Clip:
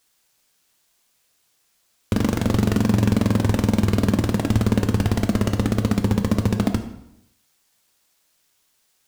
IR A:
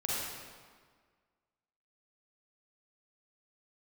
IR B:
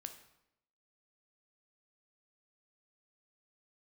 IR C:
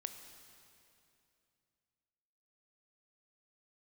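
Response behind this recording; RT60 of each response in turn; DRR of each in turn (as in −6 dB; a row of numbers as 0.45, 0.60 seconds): B; 1.7, 0.80, 2.7 seconds; −6.5, 6.5, 7.0 decibels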